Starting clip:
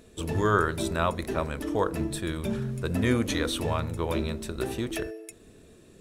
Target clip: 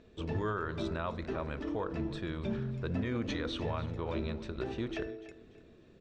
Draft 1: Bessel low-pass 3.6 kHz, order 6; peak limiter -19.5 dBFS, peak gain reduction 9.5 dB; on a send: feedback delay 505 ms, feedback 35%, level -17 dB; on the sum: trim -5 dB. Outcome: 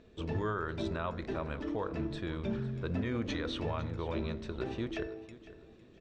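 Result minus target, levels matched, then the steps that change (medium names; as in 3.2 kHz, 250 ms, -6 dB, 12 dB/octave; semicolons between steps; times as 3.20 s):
echo 213 ms late
change: feedback delay 292 ms, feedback 35%, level -17 dB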